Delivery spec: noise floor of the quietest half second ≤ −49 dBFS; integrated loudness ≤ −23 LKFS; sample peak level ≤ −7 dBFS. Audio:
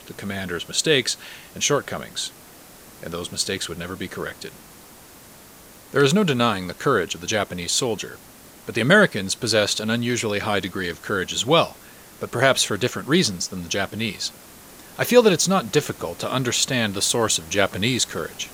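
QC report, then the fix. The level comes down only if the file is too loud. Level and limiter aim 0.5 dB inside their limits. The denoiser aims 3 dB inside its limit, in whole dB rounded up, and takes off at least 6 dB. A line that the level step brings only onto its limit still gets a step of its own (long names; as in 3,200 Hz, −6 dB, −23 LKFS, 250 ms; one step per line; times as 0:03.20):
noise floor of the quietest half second −46 dBFS: out of spec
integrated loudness −21.5 LKFS: out of spec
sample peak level −1.5 dBFS: out of spec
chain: broadband denoise 6 dB, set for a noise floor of −46 dBFS
level −2 dB
brickwall limiter −7.5 dBFS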